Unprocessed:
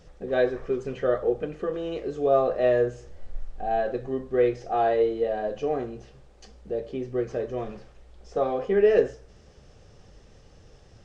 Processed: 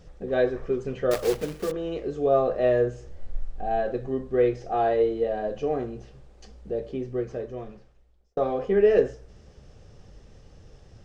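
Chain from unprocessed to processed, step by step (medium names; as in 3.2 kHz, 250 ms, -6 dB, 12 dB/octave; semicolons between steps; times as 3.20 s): 1.11–1.73 s: block-companded coder 3-bit; bass shelf 330 Hz +5 dB; 6.88–8.37 s: fade out; trim -1.5 dB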